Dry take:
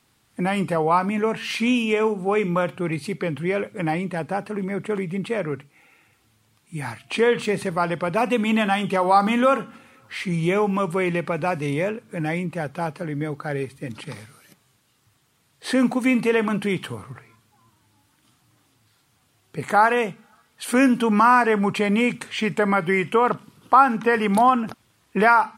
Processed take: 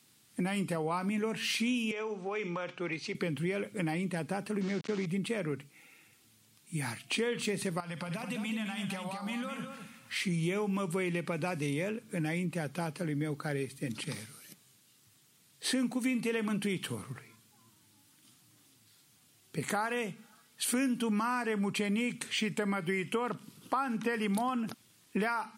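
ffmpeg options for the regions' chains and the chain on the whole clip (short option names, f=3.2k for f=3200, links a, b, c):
-filter_complex "[0:a]asettb=1/sr,asplit=3[a][b][c];[a]atrim=end=1.914[d];[b]atrim=start=1.91:end=3.15,asetpts=PTS-STARTPTS,afade=t=in:d=0.004:c=qsin,afade=t=out:st=1.236:d=0.004:c=qsin,acrossover=split=400 3200:gain=0.224 1 0.178[e][f][g];[e][f][g]amix=inputs=3:normalize=0,acompressor=threshold=-26dB:ratio=4:attack=3.2:release=140:knee=1:detection=peak,lowpass=f=6k:t=q:w=3.6[h];[c]atrim=start=3.146[i];[d][h]acrossfade=d=0.004:c1=hsin:c2=qsin[j];[j][i]acrossfade=d=0.004:c1=qsin:c2=hsin,asettb=1/sr,asplit=3[k][l][m];[k]atrim=end=4.614[n];[l]atrim=start=4.61:end=5.06,asetpts=PTS-STARTPTS,afade=t=in:d=0.004:c=qsin,afade=t=out:st=0.446:d=0.004:c=qsin,aeval=exprs='val(0)*gte(abs(val(0)),0.0237)':c=same,lowpass=f=6.2k:w=0.5412,lowpass=f=6.2k:w=1.3066[o];[m]atrim=start=5.056[p];[n][o]acrossfade=d=0.004:c1=hsin:c2=qsin[q];[q][p]acrossfade=d=0.004:c1=qsin:c2=hsin,asettb=1/sr,asplit=3[r][s][t];[r]atrim=end=7.804[u];[s]atrim=start=7.8:end=10.16,asetpts=PTS-STARTPTS,afade=t=in:d=0.004:c=qsin,afade=t=out:st=2.356:d=0.004:c=qsin,equalizer=f=370:t=o:w=0.65:g=-14,acompressor=threshold=-30dB:ratio=16:attack=3.2:release=140:knee=1:detection=peak,aecho=1:1:59|211:0.168|0.473,atrim=end_sample=104076[v];[t]atrim=start=10.156[w];[u][v]acrossfade=d=0.004:c1=hsin:c2=qsin[x];[x][w]acrossfade=d=0.004:c1=qsin:c2=hsin,highpass=180,equalizer=f=860:w=0.4:g=-12.5,acompressor=threshold=-34dB:ratio=4,volume=4dB"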